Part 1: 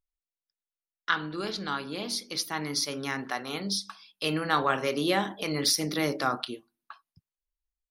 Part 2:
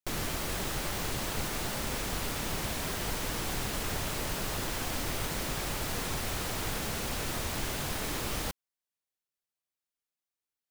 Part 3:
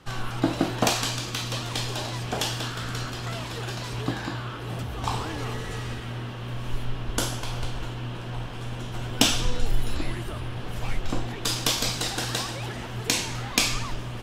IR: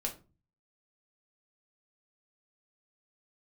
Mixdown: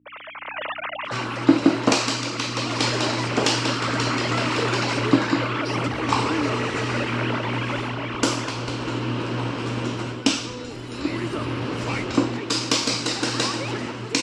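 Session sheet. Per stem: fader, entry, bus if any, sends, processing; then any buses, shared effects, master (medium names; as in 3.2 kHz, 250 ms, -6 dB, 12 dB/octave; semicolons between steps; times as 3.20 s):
-15.0 dB, 0.00 s, no send, compression, threshold -27 dBFS, peak gain reduction 8 dB
-4.0 dB, 0.00 s, no send, formants replaced by sine waves; hum 60 Hz, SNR 17 dB
+1.5 dB, 1.05 s, no send, none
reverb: none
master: level rider gain up to 11 dB; cabinet simulation 170–7300 Hz, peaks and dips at 180 Hz -5 dB, 290 Hz +6 dB, 730 Hz -9 dB, 1.7 kHz -5 dB, 3.4 kHz -8 dB, 6.4 kHz -4 dB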